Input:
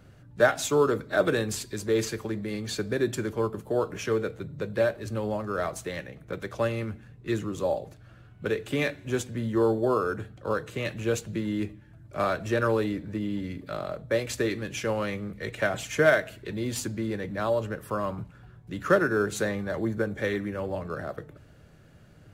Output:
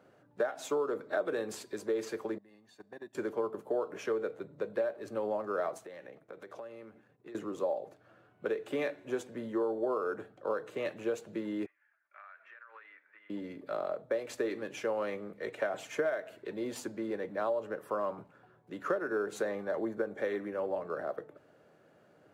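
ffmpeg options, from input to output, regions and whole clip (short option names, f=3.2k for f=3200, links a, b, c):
-filter_complex "[0:a]asettb=1/sr,asplit=3[a][b][c];[a]atrim=end=2.384[d];[b]atrim=start=2.38:end=3.15,asetpts=PTS-STARTPTS,afade=t=in:d=0.004:c=qsin,afade=t=out:st=0.766:d=0.004:c=qsin,agate=range=-20dB:threshold=-26dB:ratio=16:release=100:detection=peak,aecho=1:1:1.1:0.58,atrim=end_sample=33957,acompressor=threshold=-39dB:ratio=4:attack=3.2:release=140:knee=1:detection=peak[e];[c]atrim=start=3.146[f];[d][e]acrossfade=d=0.004:c1=hsin:c2=qsin[g];[g][f]acrossfade=d=0.004:c1=qsin:c2=hsin,asettb=1/sr,asplit=3[h][i][j];[h]atrim=end=5.784[k];[i]atrim=start=5.78:end=7.35,asetpts=PTS-STARTPTS,afade=t=in:d=0.004:c=qsin,afade=t=out:st=1.566:d=0.004:c=qsin,agate=range=-33dB:threshold=-45dB:ratio=3:release=100:detection=peak,acompressor=threshold=-39dB:ratio=16:attack=3.2:release=140:knee=1:detection=peak[l];[j]atrim=start=7.346[m];[k][l]acrossfade=d=0.004:c1=hsin:c2=qsin[n];[n][m]acrossfade=d=0.004:c1=qsin:c2=hsin,asettb=1/sr,asplit=3[o][p][q];[o]atrim=end=11.664[r];[p]atrim=start=11.66:end=13.3,asetpts=PTS-STARTPTS,afade=t=in:d=0.004:c=qsin,afade=t=out:st=1.636:d=0.004:c=qsin,asuperpass=centerf=1800:order=4:qfactor=1.7,acompressor=threshold=-43dB:ratio=20:attack=3.2:release=140:knee=1:detection=peak[s];[q]atrim=start=13.296[t];[r][s]acrossfade=d=0.004:c1=hsin:c2=qsin[u];[u][t]acrossfade=d=0.004:c1=qsin:c2=hsin,highpass=540,tiltshelf=f=1.2k:g=9.5,acompressor=threshold=-25dB:ratio=10,volume=-3dB"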